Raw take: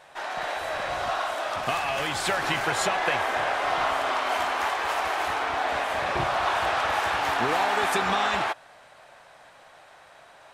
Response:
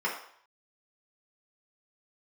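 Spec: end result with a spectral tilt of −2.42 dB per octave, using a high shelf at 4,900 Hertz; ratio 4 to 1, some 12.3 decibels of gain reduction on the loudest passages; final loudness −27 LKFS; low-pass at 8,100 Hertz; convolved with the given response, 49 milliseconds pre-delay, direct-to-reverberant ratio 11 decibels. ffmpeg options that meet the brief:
-filter_complex "[0:a]lowpass=8100,highshelf=frequency=4900:gain=3,acompressor=threshold=-36dB:ratio=4,asplit=2[link_01][link_02];[1:a]atrim=start_sample=2205,adelay=49[link_03];[link_02][link_03]afir=irnorm=-1:irlink=0,volume=-20.5dB[link_04];[link_01][link_04]amix=inputs=2:normalize=0,volume=9dB"

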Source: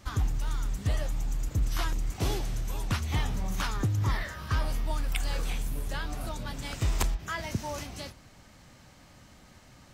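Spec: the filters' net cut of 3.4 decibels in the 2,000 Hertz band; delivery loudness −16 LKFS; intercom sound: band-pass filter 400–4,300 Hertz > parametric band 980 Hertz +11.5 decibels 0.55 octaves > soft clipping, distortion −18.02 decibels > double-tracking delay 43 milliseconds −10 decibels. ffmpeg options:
ffmpeg -i in.wav -filter_complex "[0:a]highpass=400,lowpass=4300,equalizer=frequency=980:width_type=o:width=0.55:gain=11.5,equalizer=frequency=2000:width_type=o:gain=-6,asoftclip=threshold=-23dB,asplit=2[link_01][link_02];[link_02]adelay=43,volume=-10dB[link_03];[link_01][link_03]amix=inputs=2:normalize=0,volume=21.5dB" out.wav

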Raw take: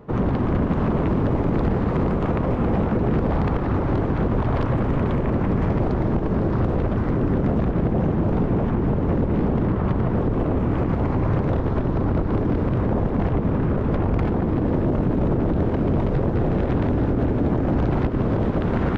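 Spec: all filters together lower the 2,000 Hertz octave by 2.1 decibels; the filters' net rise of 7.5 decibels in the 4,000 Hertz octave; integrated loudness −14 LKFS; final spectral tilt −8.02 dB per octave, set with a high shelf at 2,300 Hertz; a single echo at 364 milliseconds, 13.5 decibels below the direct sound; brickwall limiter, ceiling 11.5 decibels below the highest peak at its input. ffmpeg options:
ffmpeg -i in.wav -af "equalizer=frequency=2000:width_type=o:gain=-8,highshelf=frequency=2300:gain=7.5,equalizer=frequency=4000:width_type=o:gain=6.5,alimiter=limit=-20dB:level=0:latency=1,aecho=1:1:364:0.211,volume=14dB" out.wav

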